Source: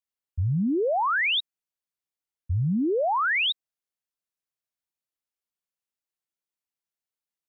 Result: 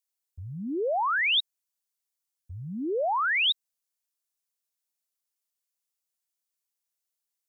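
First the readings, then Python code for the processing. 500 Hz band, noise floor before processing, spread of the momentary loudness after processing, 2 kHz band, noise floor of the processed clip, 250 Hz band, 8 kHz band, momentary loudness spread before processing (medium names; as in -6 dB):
-3.0 dB, under -85 dBFS, 17 LU, -1.5 dB, under -85 dBFS, -8.0 dB, no reading, 9 LU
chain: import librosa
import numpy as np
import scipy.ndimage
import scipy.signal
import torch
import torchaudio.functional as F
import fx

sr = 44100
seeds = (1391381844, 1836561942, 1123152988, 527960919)

y = fx.bass_treble(x, sr, bass_db=-13, treble_db=10)
y = y * 10.0 ** (-2.0 / 20.0)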